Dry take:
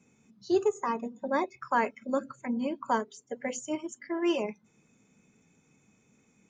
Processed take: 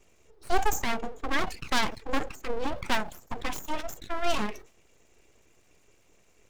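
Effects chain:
phase distortion by the signal itself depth 0.27 ms
full-wave rectification
level that may fall only so fast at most 140 dB per second
level +4.5 dB

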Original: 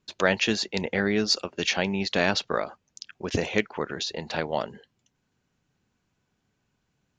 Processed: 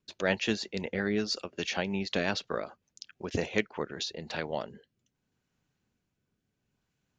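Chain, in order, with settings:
rotating-speaker cabinet horn 5.5 Hz, later 0.7 Hz, at 0:03.63
level −3.5 dB

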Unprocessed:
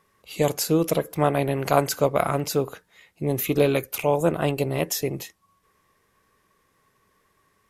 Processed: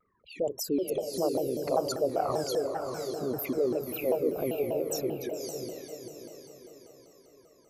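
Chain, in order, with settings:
spectral envelope exaggerated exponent 3
on a send: feedback delay with all-pass diffusion 564 ms, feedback 45%, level −4 dB
on the sum: pitch modulation by a square or saw wave saw down 5.1 Hz, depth 250 cents
level −8 dB

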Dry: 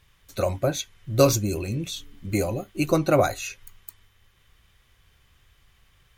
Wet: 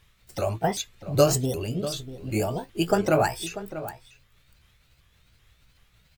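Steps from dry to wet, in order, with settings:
pitch shifter swept by a sawtooth +5.5 semitones, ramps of 385 ms
slap from a distant wall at 110 metres, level −13 dB

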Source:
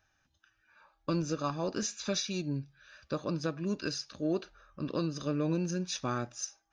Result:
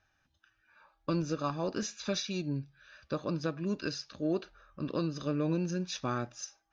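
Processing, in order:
low-pass filter 5,400 Hz 12 dB per octave

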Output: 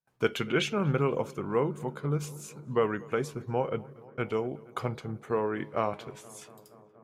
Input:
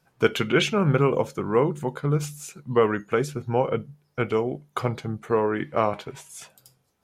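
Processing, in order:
noise gate with hold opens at −52 dBFS
on a send: feedback echo with a low-pass in the loop 237 ms, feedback 82%, low-pass 2,600 Hz, level −22.5 dB
on the sum: level −6.5 dB

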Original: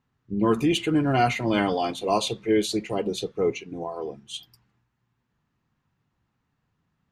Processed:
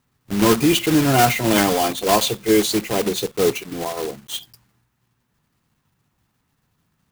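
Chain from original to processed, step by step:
one scale factor per block 3 bits
high-shelf EQ 7,700 Hz +5.5 dB
level +5.5 dB

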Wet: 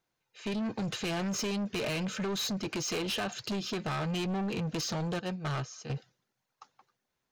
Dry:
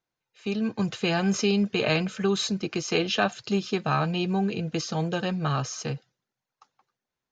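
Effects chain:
0:05.19–0:05.90: noise gate −26 dBFS, range −15 dB
downward compressor 6 to 1, threshold −26 dBFS, peak gain reduction 8 dB
soft clipping −34 dBFS, distortion −8 dB
level +4 dB

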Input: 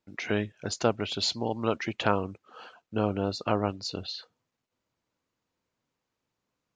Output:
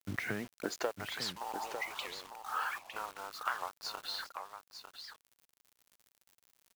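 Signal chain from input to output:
one-sided soft clipper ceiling −22 dBFS
healed spectral selection 0:01.56–0:02.24, 590–1,900 Hz both
drawn EQ curve 690 Hz 0 dB, 1,800 Hz +8 dB, 2,800 Hz −2 dB
downward compressor 12 to 1, threshold −40 dBFS, peak gain reduction 22.5 dB
high-pass filter sweep 100 Hz → 970 Hz, 0:00.23–0:01.13
surface crackle 180 per second −57 dBFS
bit reduction 9 bits
single-tap delay 901 ms −8.5 dB
wow of a warped record 78 rpm, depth 250 cents
level +5 dB

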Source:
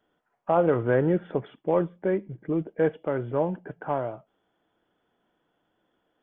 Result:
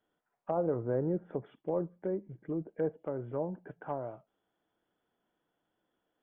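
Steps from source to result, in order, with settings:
treble cut that deepens with the level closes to 810 Hz, closed at −22.5 dBFS
level −8.5 dB

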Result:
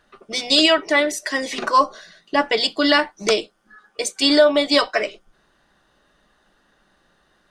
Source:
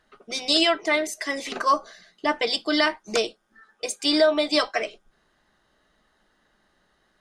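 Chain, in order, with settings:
wrong playback speed 25 fps video run at 24 fps
level +5 dB

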